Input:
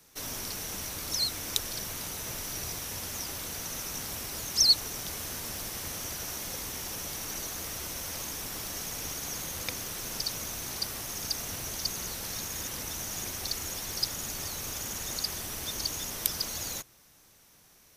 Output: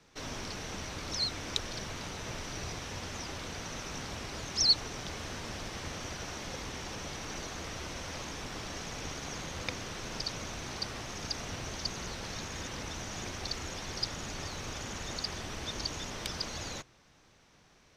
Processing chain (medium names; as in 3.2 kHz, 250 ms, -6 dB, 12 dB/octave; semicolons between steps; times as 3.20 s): distance through air 140 m; trim +2 dB